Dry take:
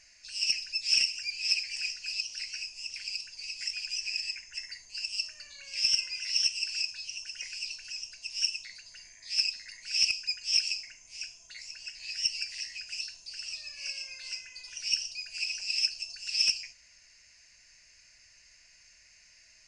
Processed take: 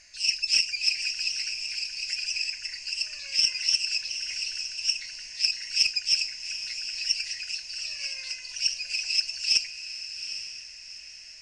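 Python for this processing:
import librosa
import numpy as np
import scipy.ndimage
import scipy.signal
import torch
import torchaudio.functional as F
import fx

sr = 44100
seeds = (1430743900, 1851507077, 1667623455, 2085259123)

y = fx.stretch_vocoder(x, sr, factor=0.58)
y = fx.echo_diffused(y, sr, ms=808, feedback_pct=40, wet_db=-9.5)
y = y * librosa.db_to_amplitude(6.0)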